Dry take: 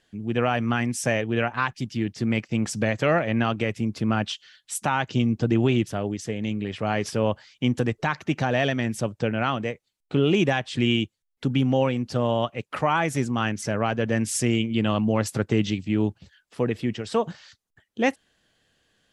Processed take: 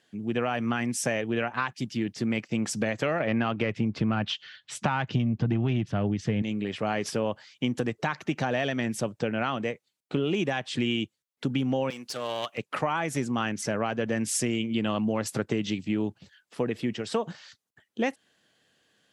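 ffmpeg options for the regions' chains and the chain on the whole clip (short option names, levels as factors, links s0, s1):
-filter_complex "[0:a]asettb=1/sr,asplit=3[s0][s1][s2];[s0]atrim=end=3.204[s3];[s1]atrim=start=3.2:end=6.42,asetpts=PTS-STARTPTS,afade=t=in:d=0.004:c=qsin,afade=t=out:st=3.216:d=0.004:c=qsin,lowpass=3600,asubboost=boost=5.5:cutoff=170,acontrast=67[s4];[s2]atrim=start=6.416[s5];[s3][s4]acrossfade=d=0.004:c1=hsin:c2=qsin[s6];[s6][s5]acrossfade=d=0.004:c1=qsin:c2=hsin,asettb=1/sr,asplit=3[s7][s8][s9];[s7]atrim=end=11.904[s10];[s8]atrim=start=11.9:end=12.58,asetpts=PTS-STARTPTS,afade=t=in:d=0.004:c=qsin,afade=t=out:st=0.676:d=0.004:c=qsin,highpass=f=1100:p=1,aemphasis=mode=production:type=cd,aeval=exprs='clip(val(0),-1,0.0282)':c=same[s11];[s9]atrim=start=12.576[s12];[s10][s11]acrossfade=d=0.004:c1=hsin:c2=qsin[s13];[s13][s12]acrossfade=d=0.004:c1=qsin:c2=hsin,highpass=140,acompressor=threshold=0.0708:ratio=6"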